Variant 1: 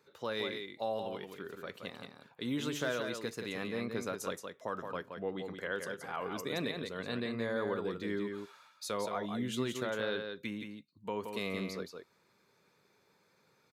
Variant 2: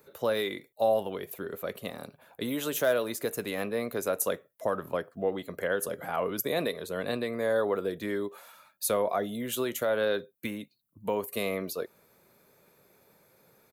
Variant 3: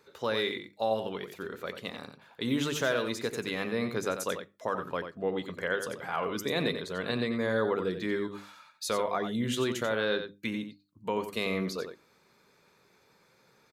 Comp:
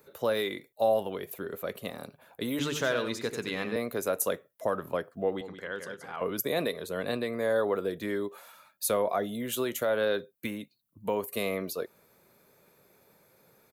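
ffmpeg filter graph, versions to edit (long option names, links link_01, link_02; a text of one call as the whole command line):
ffmpeg -i take0.wav -i take1.wav -i take2.wav -filter_complex "[1:a]asplit=3[link_01][link_02][link_03];[link_01]atrim=end=2.592[link_04];[2:a]atrim=start=2.588:end=3.762[link_05];[link_02]atrim=start=3.758:end=5.412[link_06];[0:a]atrim=start=5.408:end=6.212[link_07];[link_03]atrim=start=6.208[link_08];[link_04][link_05]acrossfade=duration=0.004:curve1=hsin:curve2=hsin[link_09];[link_09][link_06]acrossfade=duration=0.004:curve1=hsin:curve2=hsin[link_10];[link_10][link_07]acrossfade=duration=0.004:curve1=hsin:curve2=hsin[link_11];[link_11][link_08]acrossfade=duration=0.004:curve1=hsin:curve2=hsin" out.wav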